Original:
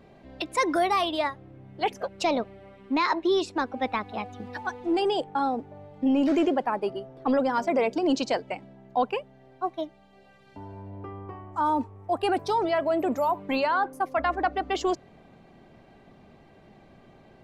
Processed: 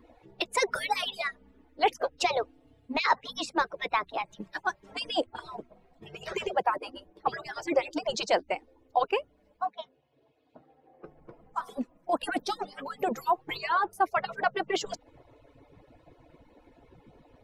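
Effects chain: harmonic-percussive separation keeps percussive; 9.65–11.04 s: band-pass 200–3800 Hz; trim +2.5 dB

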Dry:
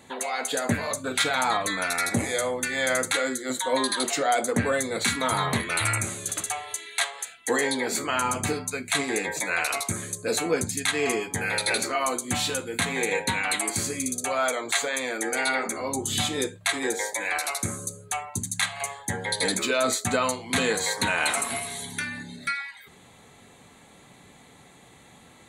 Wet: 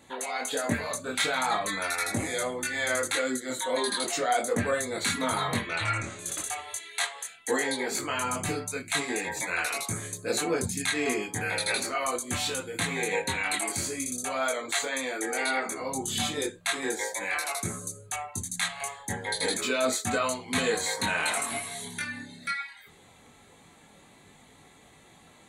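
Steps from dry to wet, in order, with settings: 5.59–6.19 s: Bessel low-pass 4.7 kHz, order 4; chorus voices 4, 0.36 Hz, delay 22 ms, depth 3.4 ms

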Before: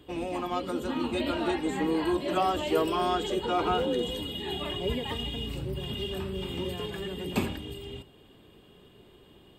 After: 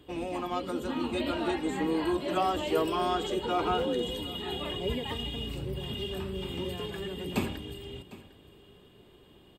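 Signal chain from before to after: delay 753 ms -18.5 dB; trim -1.5 dB

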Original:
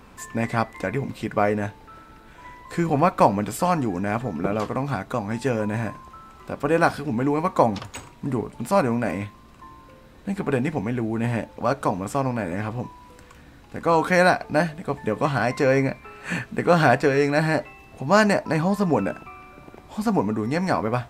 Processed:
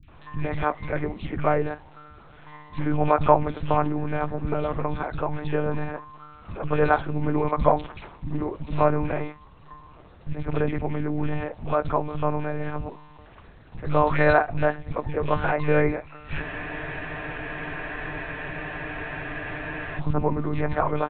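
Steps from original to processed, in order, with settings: monotone LPC vocoder at 8 kHz 150 Hz; three bands offset in time lows, highs, mids 30/80 ms, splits 230/2200 Hz; spectral freeze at 16.43 s, 3.55 s

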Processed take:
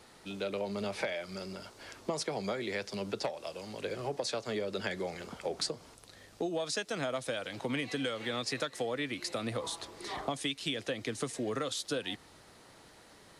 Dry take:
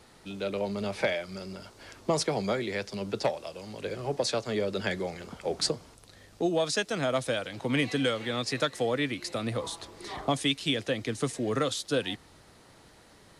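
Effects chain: bass shelf 180 Hz -6.5 dB; compression, threshold -31 dBFS, peak gain reduction 8.5 dB

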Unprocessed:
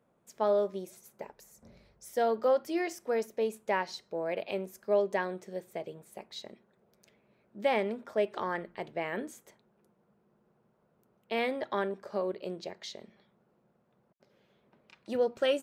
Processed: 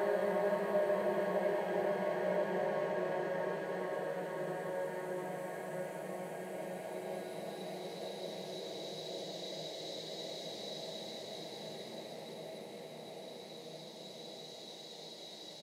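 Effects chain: spectrogram pixelated in time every 100 ms; high-pass 110 Hz; bouncing-ball echo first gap 370 ms, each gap 0.6×, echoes 5; Paulstretch 14×, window 0.50 s, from 5.65 s; trim +1 dB

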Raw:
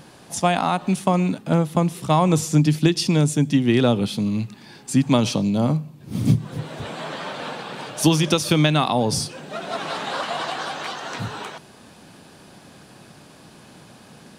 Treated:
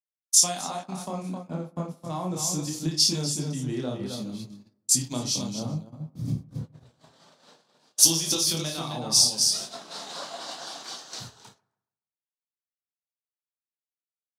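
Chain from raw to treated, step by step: chorus voices 6, 0.64 Hz, delay 28 ms, depth 4.7 ms; on a send: multi-tap echo 55/264/419 ms -8.5/-5.5/-17.5 dB; on the sum: compression 2.5:1, threshold -31 dBFS, peak gain reduction 13.5 dB; resonant high shelf 3.6 kHz +12 dB, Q 1.5; gate -31 dBFS, range -35 dB; peaking EQ 9 kHz -4 dB 0.38 oct; bucket-brigade echo 142 ms, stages 2048, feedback 65%, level -21.5 dB; three bands expanded up and down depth 100%; trim -2.5 dB

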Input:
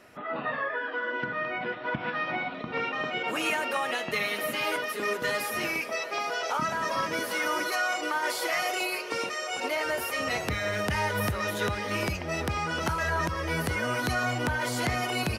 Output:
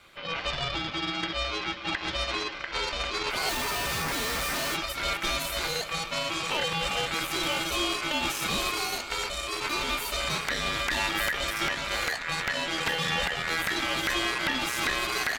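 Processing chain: Chebyshev shaper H 6 -14 dB, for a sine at -17 dBFS; ring modulator 1.8 kHz; 3.49–4.75 s: Schmitt trigger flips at -42.5 dBFS; trim +2 dB

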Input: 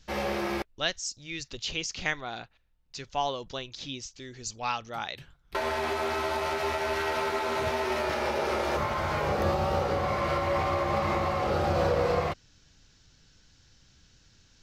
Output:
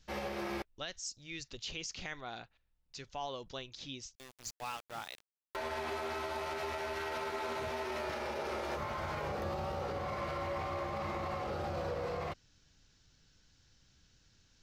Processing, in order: peak limiter -22.5 dBFS, peak gain reduction 9.5 dB; 4.15–5.56 s: small samples zeroed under -37.5 dBFS; trim -7 dB

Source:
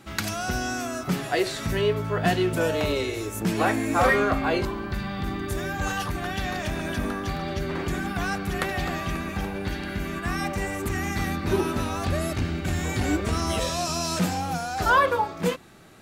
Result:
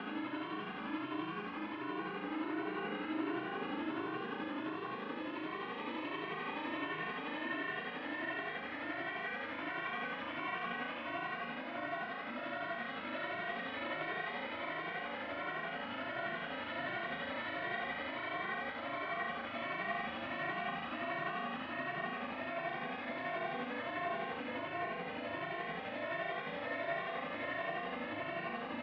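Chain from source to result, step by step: one-bit delta coder 64 kbps, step -22 dBFS; granulator, pitch spread up and down by 0 st; AM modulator 99 Hz, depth 70%; Paulstretch 38×, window 0.05 s, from 10.90 s; mistuned SSB -92 Hz 370–3200 Hz; filtered feedback delay 430 ms, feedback 79%, low-pass 1.5 kHz, level -4.5 dB; granular stretch 1.8×, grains 173 ms; endless flanger 2.1 ms +1.4 Hz; trim -2 dB

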